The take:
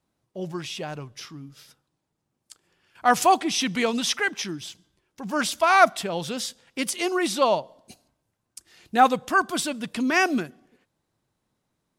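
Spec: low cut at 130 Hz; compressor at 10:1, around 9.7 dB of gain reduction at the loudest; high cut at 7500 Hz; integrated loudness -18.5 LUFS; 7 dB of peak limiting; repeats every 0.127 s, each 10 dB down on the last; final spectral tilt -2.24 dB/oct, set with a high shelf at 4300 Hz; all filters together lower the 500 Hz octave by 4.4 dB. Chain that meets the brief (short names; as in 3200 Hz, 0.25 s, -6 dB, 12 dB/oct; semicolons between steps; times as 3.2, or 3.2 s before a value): HPF 130 Hz; LPF 7500 Hz; bell 500 Hz -6.5 dB; high shelf 4300 Hz +8.5 dB; compressor 10:1, threshold -22 dBFS; limiter -18.5 dBFS; feedback echo 0.127 s, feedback 32%, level -10 dB; gain +11 dB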